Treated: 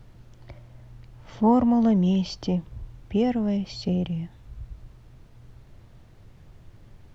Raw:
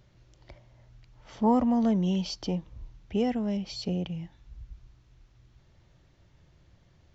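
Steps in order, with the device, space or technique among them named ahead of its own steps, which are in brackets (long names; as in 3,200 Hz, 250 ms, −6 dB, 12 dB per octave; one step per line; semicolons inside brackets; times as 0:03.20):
car interior (parametric band 110 Hz +7 dB 0.94 octaves; high-shelf EQ 4,900 Hz −7 dB; brown noise bed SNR 23 dB)
level +3.5 dB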